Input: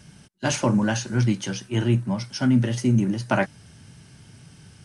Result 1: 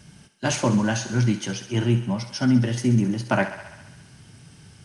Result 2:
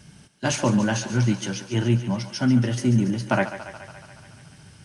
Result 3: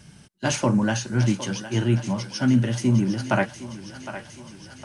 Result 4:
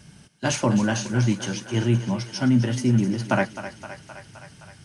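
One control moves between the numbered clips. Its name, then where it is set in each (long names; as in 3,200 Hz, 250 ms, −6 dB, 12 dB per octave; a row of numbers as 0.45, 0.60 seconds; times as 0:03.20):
feedback echo with a high-pass in the loop, delay time: 67, 142, 761, 260 milliseconds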